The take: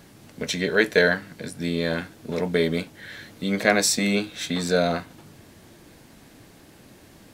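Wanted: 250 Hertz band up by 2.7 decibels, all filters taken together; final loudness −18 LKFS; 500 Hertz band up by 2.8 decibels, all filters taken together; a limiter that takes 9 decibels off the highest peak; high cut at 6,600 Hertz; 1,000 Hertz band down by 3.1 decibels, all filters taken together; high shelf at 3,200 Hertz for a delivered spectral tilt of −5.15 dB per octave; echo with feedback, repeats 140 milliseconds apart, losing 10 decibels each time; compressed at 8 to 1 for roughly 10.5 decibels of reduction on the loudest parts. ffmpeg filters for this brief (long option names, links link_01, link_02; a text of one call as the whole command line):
ffmpeg -i in.wav -af "lowpass=6600,equalizer=frequency=250:width_type=o:gain=3,equalizer=frequency=500:width_type=o:gain=4.5,equalizer=frequency=1000:width_type=o:gain=-8.5,highshelf=frequency=3200:gain=-6,acompressor=threshold=-22dB:ratio=8,alimiter=limit=-19.5dB:level=0:latency=1,aecho=1:1:140|280|420|560:0.316|0.101|0.0324|0.0104,volume=13dB" out.wav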